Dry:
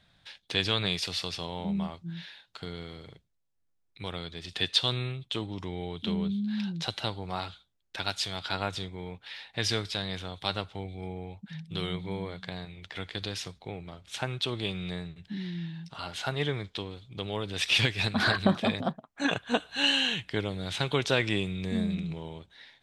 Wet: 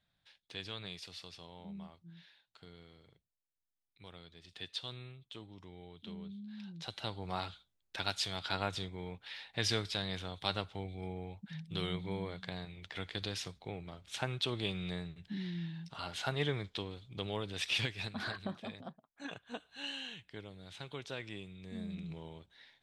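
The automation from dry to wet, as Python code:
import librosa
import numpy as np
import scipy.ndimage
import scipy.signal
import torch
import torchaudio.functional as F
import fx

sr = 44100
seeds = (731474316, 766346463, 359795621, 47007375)

y = fx.gain(x, sr, db=fx.line((6.57, -16.0), (7.28, -4.0), (17.27, -4.0), (18.52, -17.0), (21.59, -17.0), (22.15, -8.0)))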